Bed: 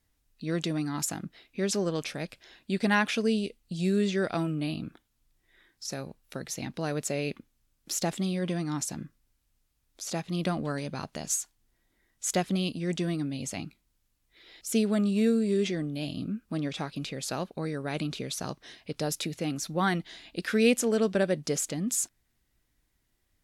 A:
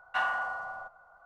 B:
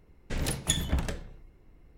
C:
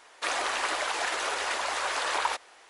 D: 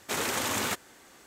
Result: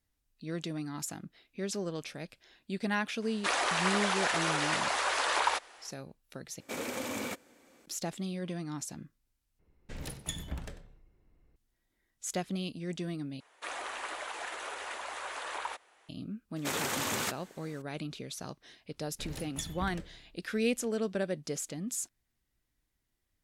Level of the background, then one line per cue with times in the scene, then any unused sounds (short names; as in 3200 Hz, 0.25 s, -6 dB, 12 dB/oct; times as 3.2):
bed -7 dB
3.22 add C -0.5 dB
6.6 replace with D -11 dB + small resonant body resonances 260/510/2300 Hz, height 11 dB, ringing for 25 ms
9.59 replace with B -10.5 dB + echo 95 ms -15.5 dB
13.4 replace with C -9.5 dB + bell 5000 Hz -6 dB 0.68 oct
16.56 add D -3.5 dB + HPF 47 Hz
18.89 add B -12.5 dB
not used: A